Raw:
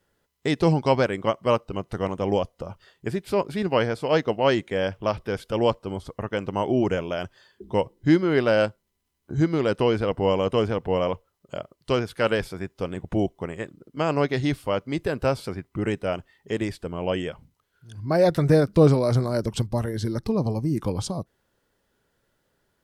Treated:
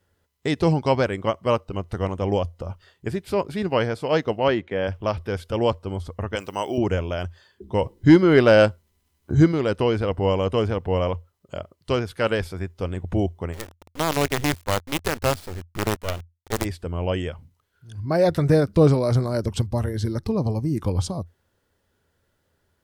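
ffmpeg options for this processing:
-filter_complex "[0:a]asettb=1/sr,asplit=3[s0][s1][s2];[s0]atrim=end=4.484[s3];[s1]atrim=start=4.48:end=4.88,asetpts=PTS-STARTPTS,afade=t=in:d=0.004:c=qsin,afade=t=out:st=0.396:d=0.004:c=qsin,highpass=130,lowpass=3100[s4];[s2]atrim=start=4.876[s5];[s3][s4]acrossfade=d=0.004:c1=hsin:c2=qsin[s6];[s6][s5]acrossfade=d=0.004:c1=qsin:c2=hsin,asettb=1/sr,asplit=3[s7][s8][s9];[s7]atrim=end=6.354[s10];[s8]atrim=start=6.35:end=6.78,asetpts=PTS-STARTPTS,afade=t=in:d=0.004:c=qsin,afade=t=out:st=0.426:d=0.004:c=qsin,aemphasis=mode=production:type=riaa[s11];[s9]atrim=start=6.776[s12];[s10][s11]acrossfade=d=0.004:c1=hsin:c2=qsin[s13];[s13][s12]acrossfade=d=0.004:c1=qsin:c2=hsin,asplit=3[s14][s15][s16];[s14]afade=t=out:st=7.81:d=0.02[s17];[s15]acontrast=63,afade=t=in:st=7.81:d=0.02,afade=t=out:st=9.51:d=0.02[s18];[s16]afade=t=in:st=9.51:d=0.02[s19];[s17][s18][s19]amix=inputs=3:normalize=0,asplit=3[s20][s21][s22];[s20]afade=t=out:st=13.52:d=0.02[s23];[s21]acrusher=bits=4:dc=4:mix=0:aa=0.000001,afade=t=in:st=13.52:d=0.02,afade=t=out:st=16.64:d=0.02[s24];[s22]afade=t=in:st=16.64:d=0.02[s25];[s23][s24][s25]amix=inputs=3:normalize=0,equalizer=f=85:w=4.1:g=13.5"

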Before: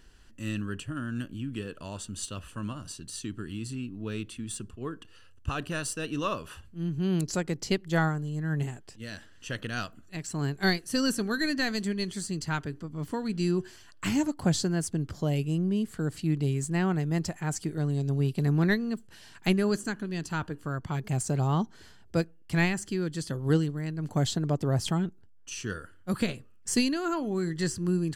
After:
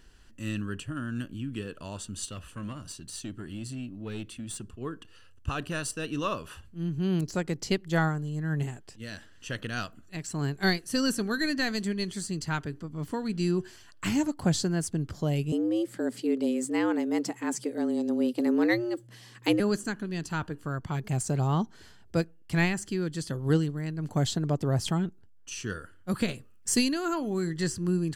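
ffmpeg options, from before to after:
-filter_complex "[0:a]asettb=1/sr,asplit=3[s0][s1][s2];[s0]atrim=end=2.314[s3];[s1]atrim=start=2.31:end=4.68,asetpts=PTS-STARTPTS,afade=t=in:d=0.004:c=qsin,afade=t=out:st=2.366:d=0.004:c=qsin,aeval=exprs='(tanh(22.4*val(0)+0.25)-tanh(0.25))/22.4':c=same[s4];[s2]atrim=start=4.676[s5];[s3][s4]acrossfade=d=0.004:c1=hsin:c2=qsin[s6];[s6][s5]acrossfade=d=0.004:c1=qsin:c2=hsin,asettb=1/sr,asplit=3[s7][s8][s9];[s7]atrim=end=5.914[s10];[s8]atrim=start=5.91:end=7.47,asetpts=PTS-STARTPTS,afade=t=in:d=0.004:c=qsin,afade=t=out:st=1.556:d=0.004:c=qsin,deesser=0.9[s11];[s9]atrim=start=7.466[s12];[s10][s11]acrossfade=d=0.004:c1=hsin:c2=qsin[s13];[s13][s12]acrossfade=d=0.004:c1=qsin:c2=hsin,asettb=1/sr,asplit=3[s14][s15][s16];[s14]atrim=end=15.524[s17];[s15]atrim=start=15.52:end=19.6,asetpts=PTS-STARTPTS,afade=t=in:d=0.004:c=qsin,afade=t=out:st=4.076:d=0.004:c=qsin,afreqshift=120[s18];[s16]atrim=start=19.596[s19];[s17][s18]acrossfade=d=0.004:c1=hsin:c2=qsin[s20];[s20][s19]acrossfade=d=0.004:c1=qsin:c2=hsin,asettb=1/sr,asplit=3[s21][s22][s23];[s21]atrim=end=26.284[s24];[s22]atrim=start=26.28:end=27.47,asetpts=PTS-STARTPTS,afade=t=in:d=0.004:c=qsin,afade=t=out:st=1.186:d=0.004:c=qsin,highshelf=f=6800:g=6[s25];[s23]atrim=start=27.466[s26];[s24][s25]acrossfade=d=0.004:c1=hsin:c2=qsin[s27];[s27][s26]acrossfade=d=0.004:c1=qsin:c2=hsin"

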